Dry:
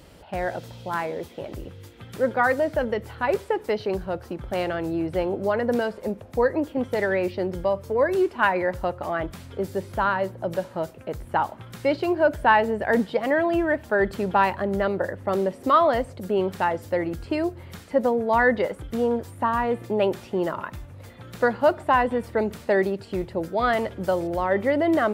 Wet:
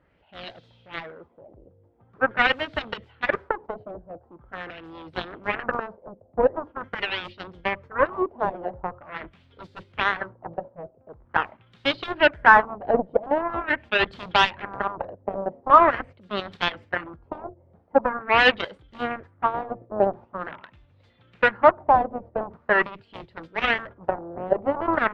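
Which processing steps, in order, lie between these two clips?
Chebyshev shaper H 7 -14 dB, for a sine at -6.5 dBFS; gate -41 dBFS, range -8 dB; LFO low-pass sine 0.44 Hz 620–3800 Hz

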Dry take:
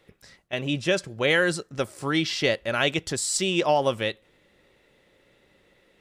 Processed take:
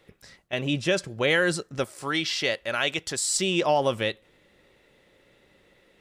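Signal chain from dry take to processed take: 1.84–3.36 s: bass shelf 460 Hz -9 dB; in parallel at -2 dB: peak limiter -17 dBFS, peak gain reduction 7 dB; on the sum: trim -4 dB

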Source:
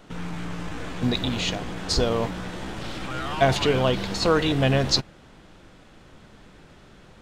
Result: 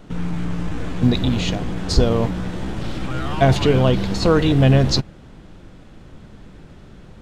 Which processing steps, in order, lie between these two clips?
bass shelf 390 Hz +10.5 dB

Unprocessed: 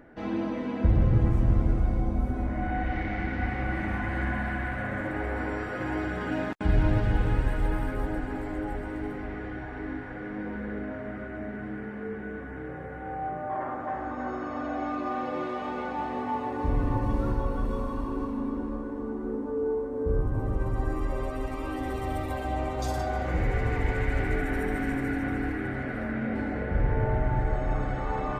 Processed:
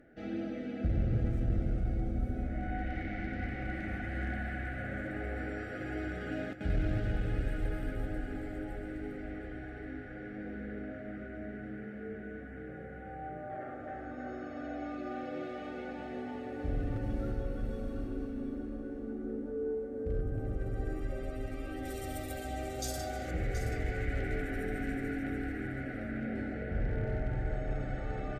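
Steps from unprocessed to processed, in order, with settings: 21.85–23.31 s: tone controls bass -2 dB, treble +13 dB; one-sided clip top -20.5 dBFS; Butterworth band-stop 1 kHz, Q 1.8; delay 726 ms -11 dB; trim -7 dB

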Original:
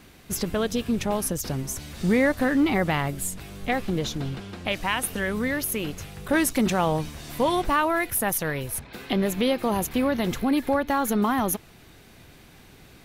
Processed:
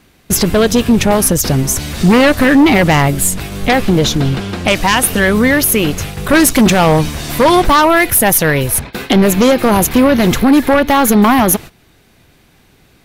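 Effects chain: gate -40 dBFS, range -16 dB; sine folder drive 6 dB, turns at -11 dBFS; trim +7 dB

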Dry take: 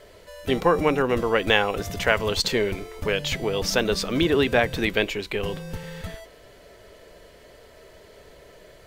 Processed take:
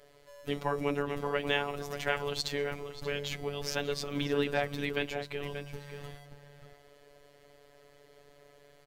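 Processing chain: echo from a far wall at 100 m, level -8 dB; robot voice 143 Hz; trim -8.5 dB

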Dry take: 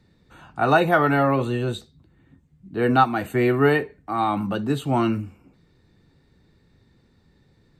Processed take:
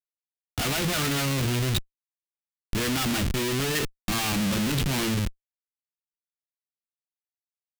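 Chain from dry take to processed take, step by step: Schmitt trigger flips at -33 dBFS; FFT filter 200 Hz 0 dB, 780 Hz -9 dB, 2.9 kHz +3 dB

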